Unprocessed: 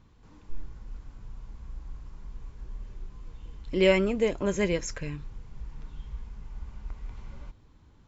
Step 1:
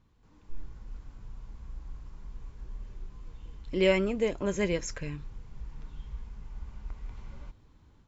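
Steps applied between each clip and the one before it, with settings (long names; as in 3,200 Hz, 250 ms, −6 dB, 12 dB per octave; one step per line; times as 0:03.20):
automatic gain control gain up to 6.5 dB
level −8 dB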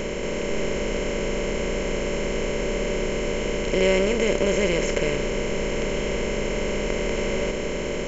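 compressor on every frequency bin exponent 0.2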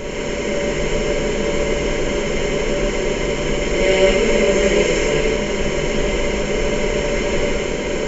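reverb whose tail is shaped and stops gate 230 ms flat, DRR −6.5 dB
level −1 dB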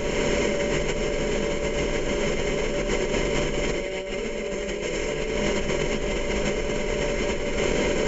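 compressor whose output falls as the input rises −22 dBFS, ratio −1
level −3.5 dB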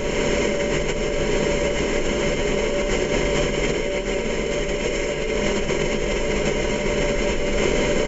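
single-tap delay 1,162 ms −4.5 dB
level +2.5 dB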